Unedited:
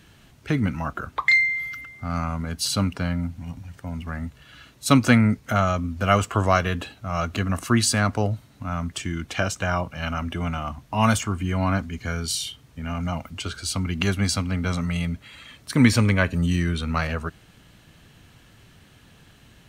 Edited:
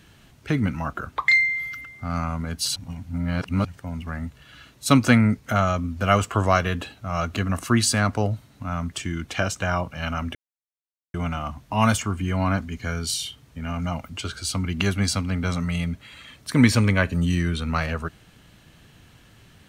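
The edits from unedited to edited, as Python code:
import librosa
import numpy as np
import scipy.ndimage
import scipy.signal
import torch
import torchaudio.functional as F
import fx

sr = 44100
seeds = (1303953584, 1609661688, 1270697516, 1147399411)

y = fx.edit(x, sr, fx.reverse_span(start_s=2.76, length_s=0.89),
    fx.insert_silence(at_s=10.35, length_s=0.79), tone=tone)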